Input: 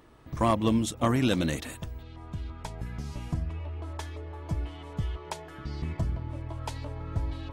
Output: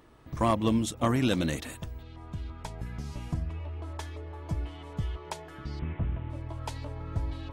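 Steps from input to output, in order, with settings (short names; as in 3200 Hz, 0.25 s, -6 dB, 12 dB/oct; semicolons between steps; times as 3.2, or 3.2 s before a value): 5.79–6.3 delta modulation 16 kbps, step -47.5 dBFS; gain -1 dB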